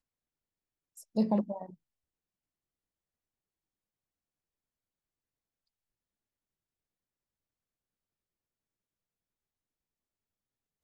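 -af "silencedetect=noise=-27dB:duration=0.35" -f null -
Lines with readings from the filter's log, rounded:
silence_start: 0.00
silence_end: 1.17 | silence_duration: 1.17
silence_start: 1.52
silence_end: 10.84 | silence_duration: 9.32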